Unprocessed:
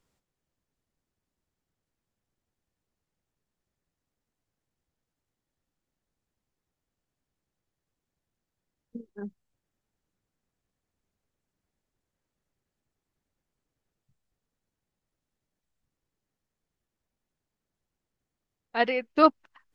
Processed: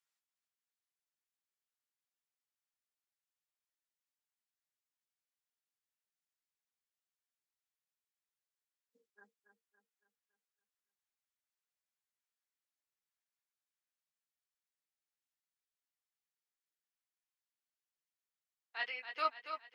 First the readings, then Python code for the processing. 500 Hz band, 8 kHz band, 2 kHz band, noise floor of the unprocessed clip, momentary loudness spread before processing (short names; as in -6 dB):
-21.5 dB, n/a, -8.5 dB, under -85 dBFS, 20 LU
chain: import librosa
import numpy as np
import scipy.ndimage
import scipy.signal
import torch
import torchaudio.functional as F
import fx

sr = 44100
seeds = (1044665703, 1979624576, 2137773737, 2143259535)

y = scipy.signal.sosfilt(scipy.signal.butter(2, 1400.0, 'highpass', fs=sr, output='sos'), x)
y = fx.chorus_voices(y, sr, voices=2, hz=0.19, base_ms=12, depth_ms=4.2, mix_pct=35)
y = fx.echo_feedback(y, sr, ms=280, feedback_pct=49, wet_db=-8.5)
y = y * librosa.db_to_amplitude(-6.0)